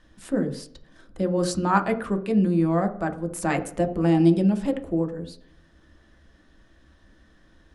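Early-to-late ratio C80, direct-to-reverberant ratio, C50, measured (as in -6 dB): 16.5 dB, 5.0 dB, 12.0 dB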